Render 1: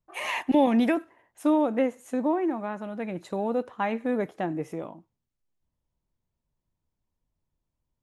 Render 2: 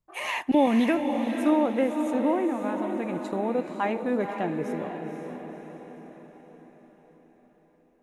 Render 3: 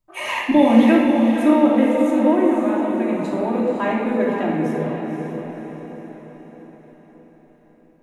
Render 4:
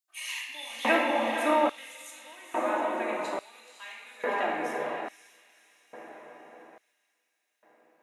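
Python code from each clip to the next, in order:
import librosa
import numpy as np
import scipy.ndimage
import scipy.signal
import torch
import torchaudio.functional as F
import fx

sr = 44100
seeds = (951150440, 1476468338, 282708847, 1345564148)

y1 = fx.echo_diffused(x, sr, ms=513, feedback_pct=52, wet_db=-6.0)
y2 = fx.room_shoebox(y1, sr, seeds[0], volume_m3=1500.0, walls='mixed', distance_m=2.8)
y2 = y2 * 10.0 ** (1.5 / 20.0)
y3 = fx.filter_lfo_highpass(y2, sr, shape='square', hz=0.59, low_hz=790.0, high_hz=4100.0, q=0.77)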